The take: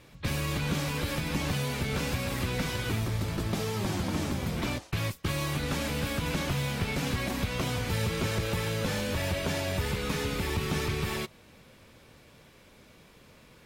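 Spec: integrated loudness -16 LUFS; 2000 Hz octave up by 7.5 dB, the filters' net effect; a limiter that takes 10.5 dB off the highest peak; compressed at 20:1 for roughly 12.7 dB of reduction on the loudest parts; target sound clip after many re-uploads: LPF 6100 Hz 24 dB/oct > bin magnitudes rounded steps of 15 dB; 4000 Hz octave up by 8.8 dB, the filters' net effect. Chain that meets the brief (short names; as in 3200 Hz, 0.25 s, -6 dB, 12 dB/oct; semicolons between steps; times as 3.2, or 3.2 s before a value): bell 2000 Hz +6.5 dB; bell 4000 Hz +9 dB; compressor 20:1, threshold -36 dBFS; limiter -31.5 dBFS; LPF 6100 Hz 24 dB/oct; bin magnitudes rounded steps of 15 dB; gain +25.5 dB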